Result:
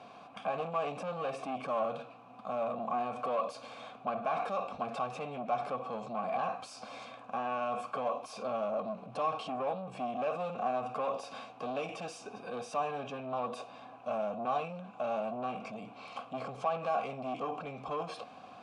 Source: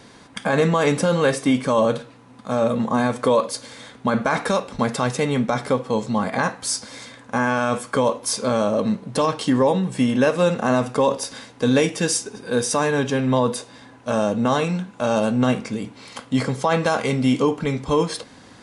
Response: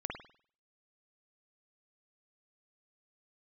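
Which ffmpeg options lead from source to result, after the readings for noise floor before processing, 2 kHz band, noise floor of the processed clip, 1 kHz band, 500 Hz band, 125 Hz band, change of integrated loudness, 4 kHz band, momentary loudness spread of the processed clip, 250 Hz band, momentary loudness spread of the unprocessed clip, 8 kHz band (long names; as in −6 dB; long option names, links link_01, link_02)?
−47 dBFS, −19.0 dB, −52 dBFS, −9.5 dB, −14.5 dB, −24.0 dB, −15.5 dB, −19.5 dB, 11 LU, −23.0 dB, 9 LU, −27.5 dB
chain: -filter_complex "[0:a]lowshelf=frequency=260:width_type=q:width=1.5:gain=6,asoftclip=type=tanh:threshold=-17.5dB,alimiter=level_in=1dB:limit=-24dB:level=0:latency=1:release=18,volume=-1dB,asplit=3[link_01][link_02][link_03];[link_01]bandpass=frequency=730:width_type=q:width=8,volume=0dB[link_04];[link_02]bandpass=frequency=1090:width_type=q:width=8,volume=-6dB[link_05];[link_03]bandpass=frequency=2440:width_type=q:width=8,volume=-9dB[link_06];[link_04][link_05][link_06]amix=inputs=3:normalize=0,volume=8.5dB"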